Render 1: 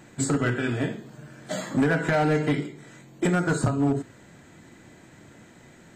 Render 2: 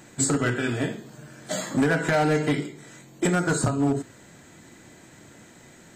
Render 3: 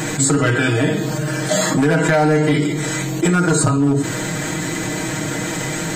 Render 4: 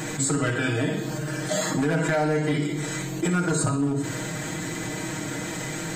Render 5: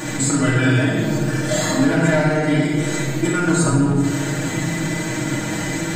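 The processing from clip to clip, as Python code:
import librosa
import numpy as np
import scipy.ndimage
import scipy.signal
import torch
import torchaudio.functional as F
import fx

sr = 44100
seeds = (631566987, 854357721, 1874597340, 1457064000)

y1 = fx.bass_treble(x, sr, bass_db=-2, treble_db=6)
y1 = y1 * librosa.db_to_amplitude(1.0)
y2 = y1 + 0.8 * np.pad(y1, (int(6.4 * sr / 1000.0), 0))[:len(y1)]
y2 = fx.env_flatten(y2, sr, amount_pct=70)
y2 = y2 * librosa.db_to_amplitude(1.5)
y3 = fx.echo_feedback(y2, sr, ms=61, feedback_pct=52, wet_db=-12.0)
y3 = y3 * librosa.db_to_amplitude(-8.5)
y4 = fx.room_shoebox(y3, sr, seeds[0], volume_m3=1500.0, walls='mixed', distance_m=2.5)
y4 = y4 * librosa.db_to_amplitude(2.0)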